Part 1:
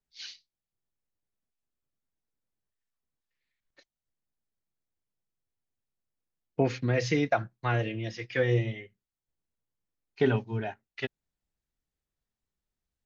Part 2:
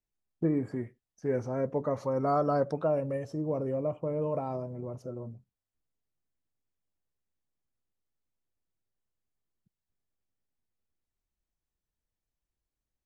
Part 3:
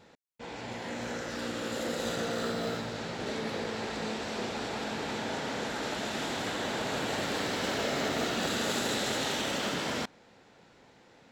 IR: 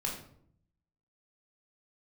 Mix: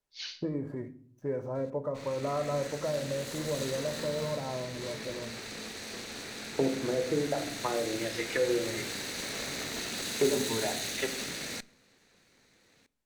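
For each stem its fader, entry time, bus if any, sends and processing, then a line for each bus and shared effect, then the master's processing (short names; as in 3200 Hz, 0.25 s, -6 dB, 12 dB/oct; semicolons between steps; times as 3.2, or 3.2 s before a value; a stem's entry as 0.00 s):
-0.5 dB, 0.00 s, bus A, send -5.5 dB, HPF 260 Hz 12 dB/oct; treble ducked by the level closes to 560 Hz, closed at -27.5 dBFS
-4.0 dB, 0.00 s, bus A, send -12 dB, median filter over 9 samples
-8.5 dB, 1.55 s, no bus, send -21.5 dB, minimum comb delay 0.47 ms; high shelf 2800 Hz +11.5 dB
bus A: 0.0 dB, small resonant body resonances 580/1000 Hz, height 11 dB; compressor, threshold -32 dBFS, peak gain reduction 12 dB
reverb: on, RT60 0.65 s, pre-delay 14 ms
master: dry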